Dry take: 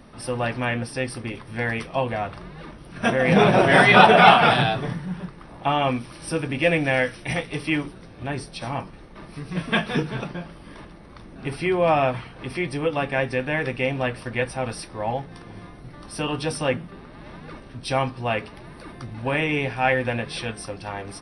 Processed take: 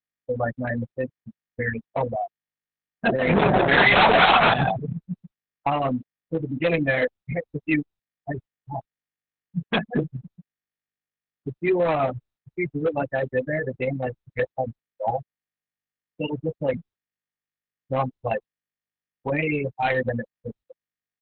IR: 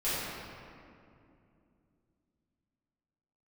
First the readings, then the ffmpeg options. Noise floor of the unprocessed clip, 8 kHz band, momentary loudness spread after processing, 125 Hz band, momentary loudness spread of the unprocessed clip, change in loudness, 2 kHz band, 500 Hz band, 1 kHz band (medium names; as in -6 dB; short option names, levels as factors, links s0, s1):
-44 dBFS, under -40 dB, 19 LU, -2.5 dB, 23 LU, -1.5 dB, -2.0 dB, -1.5 dB, -3.0 dB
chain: -af "agate=range=0.126:threshold=0.0355:ratio=16:detection=peak,afftfilt=real='re*gte(hypot(re,im),0.2)':imag='im*gte(hypot(re,im),0.2)':win_size=1024:overlap=0.75,lowshelf=f=170:g=-3.5,aresample=11025,asoftclip=type=hard:threshold=0.126,aresample=44100,volume=1.33" -ar 48000 -c:a libopus -b:a 6k